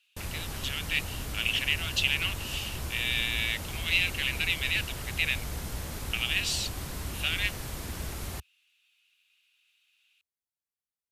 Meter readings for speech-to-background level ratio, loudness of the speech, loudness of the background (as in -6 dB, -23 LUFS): 8.0 dB, -29.5 LUFS, -37.5 LUFS